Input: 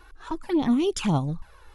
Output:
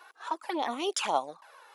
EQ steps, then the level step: ladder high-pass 490 Hz, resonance 30%; +7.5 dB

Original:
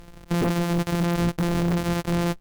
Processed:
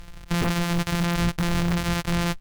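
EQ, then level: peaking EQ 370 Hz -12.5 dB 2.8 oct; treble shelf 6.4 kHz -6 dB; +7.0 dB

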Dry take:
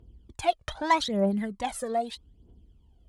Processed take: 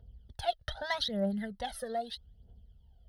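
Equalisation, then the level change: dynamic bell 740 Hz, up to -7 dB, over -37 dBFS, Q 0.9; static phaser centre 1.6 kHz, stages 8; 0.0 dB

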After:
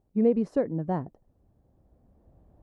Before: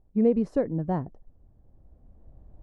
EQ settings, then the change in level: high-pass 130 Hz 6 dB/octave; 0.0 dB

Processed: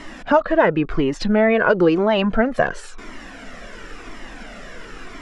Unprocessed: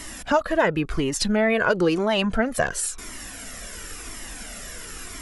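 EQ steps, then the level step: tape spacing loss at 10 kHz 23 dB; peaking EQ 64 Hz -14 dB 1.5 oct; treble shelf 8.6 kHz -11 dB; +7.0 dB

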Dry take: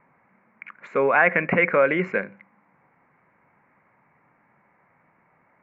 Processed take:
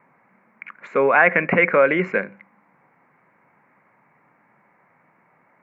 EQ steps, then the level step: high-pass 130 Hz 12 dB/octave; +3.0 dB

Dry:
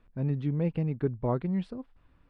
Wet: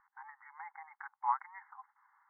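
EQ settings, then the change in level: brick-wall FIR band-pass 780–2200 Hz; distance through air 240 m; tilt EQ -3 dB/octave; +8.5 dB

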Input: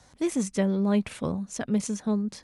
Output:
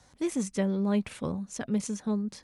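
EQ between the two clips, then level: band-stop 660 Hz, Q 18; -3.0 dB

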